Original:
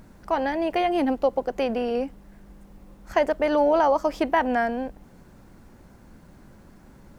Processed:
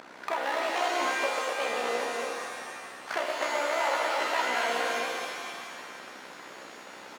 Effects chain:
in parallel at −2 dB: output level in coarse steps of 21 dB
on the sum: low-pass filter 3,300 Hz 12 dB per octave
single-tap delay 249 ms −10.5 dB
downward compressor 5 to 1, threshold −34 dBFS, peak gain reduction 19.5 dB
amplitude modulation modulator 63 Hz, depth 90%
asymmetric clip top −41.5 dBFS
spectral tilt +2 dB per octave
leveller curve on the samples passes 2
high-pass filter 470 Hz 12 dB per octave
reverb with rising layers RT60 1.8 s, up +7 semitones, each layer −2 dB, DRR 1 dB
level +5.5 dB

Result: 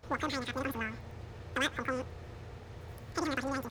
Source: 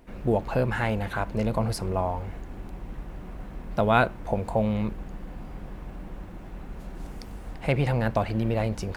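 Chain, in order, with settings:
far-end echo of a speakerphone 270 ms, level −22 dB
change of speed 2.42×
hard clipping −14 dBFS, distortion −21 dB
level −9 dB

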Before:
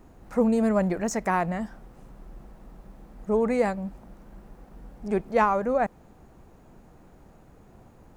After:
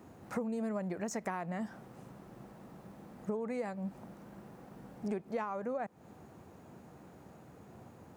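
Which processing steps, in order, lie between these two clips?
high-pass filter 88 Hz 24 dB per octave
downward compressor 16 to 1, threshold −33 dBFS, peak gain reduction 18 dB

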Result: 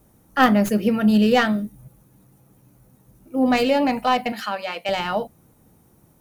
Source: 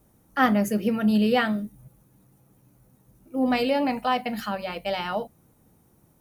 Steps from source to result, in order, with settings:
stylus tracing distortion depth 0.051 ms
0:04.32–0:04.89: meter weighting curve A
level +4.5 dB

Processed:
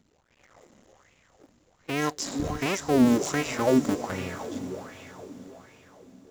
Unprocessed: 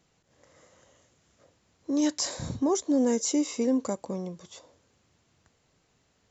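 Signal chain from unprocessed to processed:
sub-harmonics by changed cycles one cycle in 2, muted
low-shelf EQ 130 Hz +5 dB
in parallel at −2 dB: brickwall limiter −25.5 dBFS, peak gain reduction 10 dB
on the sum: feedback delay with all-pass diffusion 514 ms, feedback 49%, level −9 dB
auto-filter bell 1.3 Hz 220–2,600 Hz +15 dB
level −4.5 dB

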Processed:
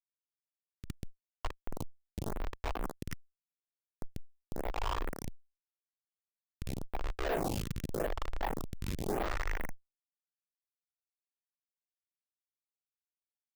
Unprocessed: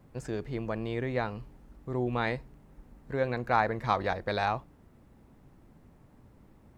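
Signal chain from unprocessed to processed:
every frequency bin delayed by itself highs late, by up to 667 ms
dynamic equaliser 3,600 Hz, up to +5 dB, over −56 dBFS, Q 2.2
high-pass filter 860 Hz 24 dB per octave
wrong playback speed 15 ips tape played at 7.5 ips
in parallel at +2 dB: compressor whose output falls as the input rises −49 dBFS, ratio −1
on the sum: parametric band 1,200 Hz +5 dB 1.6 octaves
comparator with hysteresis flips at −26.5 dBFS
phaser with staggered stages 0.88 Hz
level +7 dB

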